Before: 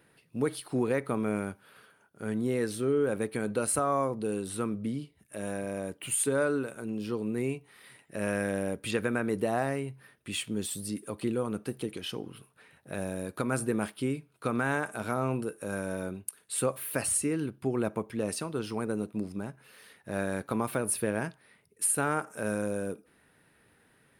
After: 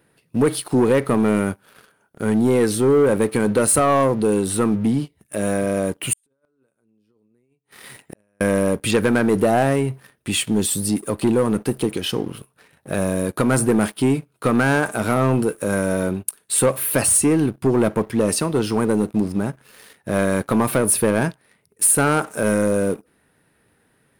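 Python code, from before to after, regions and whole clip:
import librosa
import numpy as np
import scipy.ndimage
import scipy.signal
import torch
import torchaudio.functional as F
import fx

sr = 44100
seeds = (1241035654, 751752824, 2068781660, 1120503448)

y = fx.chain(x, sr, fx.over_compress(threshold_db=-32.0, ratio=-0.5),
    fx.gate_flip(shuts_db=-34.0, range_db=-35), at=(6.13, 8.41))
y = fx.peak_eq(y, sr, hz=2400.0, db=-3.5, octaves=2.4)
y = fx.leveller(y, sr, passes=2)
y = y * librosa.db_to_amplitude(7.5)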